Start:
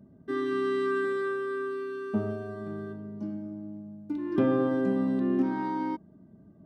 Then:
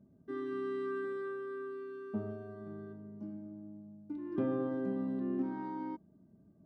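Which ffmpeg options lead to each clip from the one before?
-af "highshelf=f=2000:g=-9.5,volume=0.376"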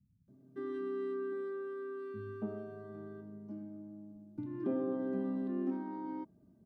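-filter_complex "[0:a]acrossover=split=850[s0][s1];[s1]alimiter=level_in=20:limit=0.0631:level=0:latency=1,volume=0.0501[s2];[s0][s2]amix=inputs=2:normalize=0,acrossover=split=150[s3][s4];[s4]adelay=280[s5];[s3][s5]amix=inputs=2:normalize=0"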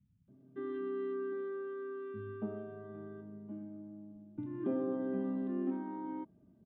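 -af "aresample=8000,aresample=44100"

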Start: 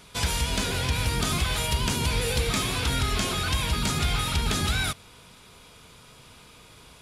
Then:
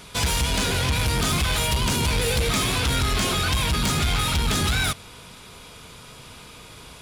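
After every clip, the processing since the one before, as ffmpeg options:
-af "asoftclip=type=tanh:threshold=0.0596,volume=2.24"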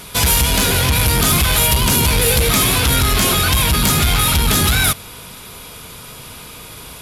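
-af "equalizer=f=12000:t=o:w=0.38:g=14,volume=2.24"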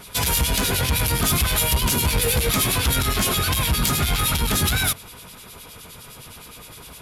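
-filter_complex "[0:a]acrossover=split=2200[s0][s1];[s0]aeval=exprs='val(0)*(1-0.7/2+0.7/2*cos(2*PI*9.7*n/s))':c=same[s2];[s1]aeval=exprs='val(0)*(1-0.7/2-0.7/2*cos(2*PI*9.7*n/s))':c=same[s3];[s2][s3]amix=inputs=2:normalize=0,volume=0.708"

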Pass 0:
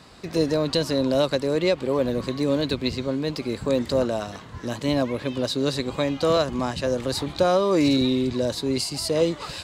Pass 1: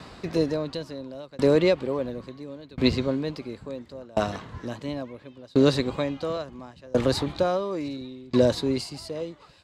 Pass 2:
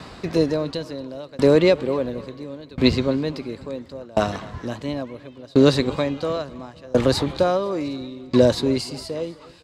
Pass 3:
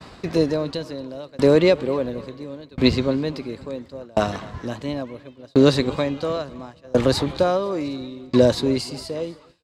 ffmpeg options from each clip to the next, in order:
-af "aemphasis=mode=reproduction:type=cd,aeval=exprs='val(0)*pow(10,-30*if(lt(mod(0.72*n/s,1),2*abs(0.72)/1000),1-mod(0.72*n/s,1)/(2*abs(0.72)/1000),(mod(0.72*n/s,1)-2*abs(0.72)/1000)/(1-2*abs(0.72)/1000))/20)':c=same,volume=2.24"
-af "aecho=1:1:253|506|759:0.0891|0.0401|0.018,volume=1.68"
-af "agate=range=0.0224:threshold=0.0158:ratio=3:detection=peak"

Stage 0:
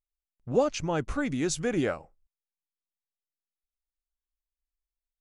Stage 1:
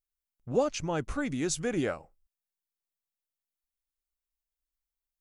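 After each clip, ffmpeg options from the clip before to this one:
-af "highshelf=f=9700:g=8,volume=0.75"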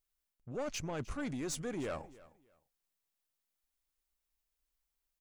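-af "areverse,acompressor=threshold=0.0126:ratio=6,areverse,aeval=exprs='(tanh(79.4*val(0)+0.25)-tanh(0.25))/79.4':c=same,aecho=1:1:307|614:0.1|0.023,volume=1.78"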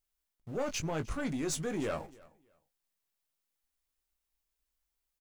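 -filter_complex "[0:a]asplit=2[s0][s1];[s1]aeval=exprs='val(0)*gte(abs(val(0)),0.00335)':c=same,volume=0.501[s2];[s0][s2]amix=inputs=2:normalize=0,asplit=2[s3][s4];[s4]adelay=19,volume=0.398[s5];[s3][s5]amix=inputs=2:normalize=0"

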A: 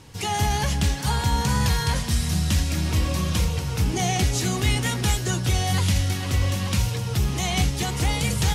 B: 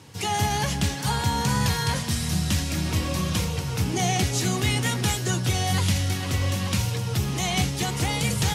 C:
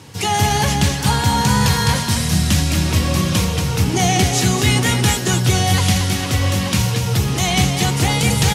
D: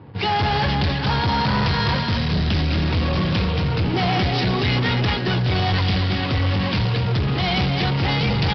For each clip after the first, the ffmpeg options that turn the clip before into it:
-af "highpass=f=85:w=0.5412,highpass=f=85:w=1.3066"
-af "aecho=1:1:230:0.422,volume=2.37"
-af "adynamicsmooth=sensitivity=6.5:basefreq=530,aresample=11025,volume=7.08,asoftclip=hard,volume=0.141,aresample=44100"

